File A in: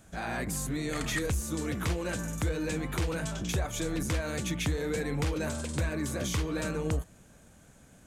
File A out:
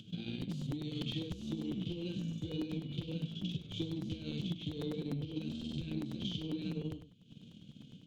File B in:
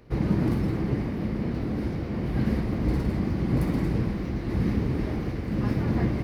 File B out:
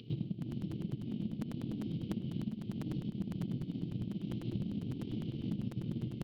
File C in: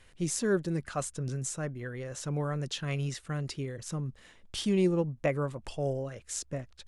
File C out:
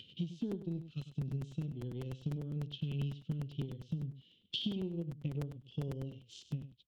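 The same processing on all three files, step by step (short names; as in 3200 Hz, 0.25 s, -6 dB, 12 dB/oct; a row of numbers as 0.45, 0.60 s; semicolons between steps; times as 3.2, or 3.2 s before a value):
HPF 110 Hz 24 dB/oct; band shelf 790 Hz -13.5 dB 1.1 oct; harmonic-percussive split percussive -16 dB; EQ curve 270 Hz 0 dB, 1800 Hz -29 dB, 3100 Hz +10 dB, 9000 Hz -29 dB; upward compressor, threshold -49 dBFS; transient shaper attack +9 dB, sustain -5 dB; compressor 12:1, threshold -35 dBFS; on a send: echo 0.1 s -12 dB; on the sum: crackling interface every 0.10 s, samples 256, repeat, from 0.41; gain +1 dB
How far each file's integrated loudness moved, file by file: -7.5, -12.0, -7.5 LU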